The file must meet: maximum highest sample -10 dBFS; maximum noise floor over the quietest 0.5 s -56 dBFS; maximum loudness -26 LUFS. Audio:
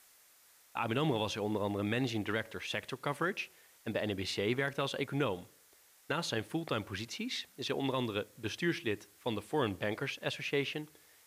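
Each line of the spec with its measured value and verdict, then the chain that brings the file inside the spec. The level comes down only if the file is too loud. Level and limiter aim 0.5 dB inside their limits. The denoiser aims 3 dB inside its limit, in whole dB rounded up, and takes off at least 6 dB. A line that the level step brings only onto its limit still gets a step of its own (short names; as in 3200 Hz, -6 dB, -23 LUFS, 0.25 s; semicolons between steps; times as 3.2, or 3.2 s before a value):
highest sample -21.0 dBFS: OK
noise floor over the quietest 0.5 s -64 dBFS: OK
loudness -36.0 LUFS: OK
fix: none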